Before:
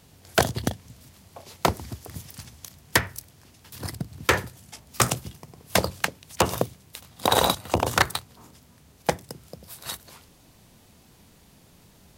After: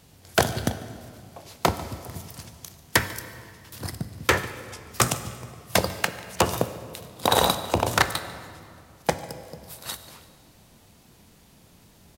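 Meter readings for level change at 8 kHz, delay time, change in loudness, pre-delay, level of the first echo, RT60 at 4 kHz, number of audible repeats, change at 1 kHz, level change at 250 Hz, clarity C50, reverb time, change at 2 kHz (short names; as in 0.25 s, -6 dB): +0.5 dB, 0.145 s, 0.0 dB, 6 ms, -21.0 dB, 1.6 s, 1, +0.5 dB, +0.5 dB, 12.0 dB, 2.4 s, +0.5 dB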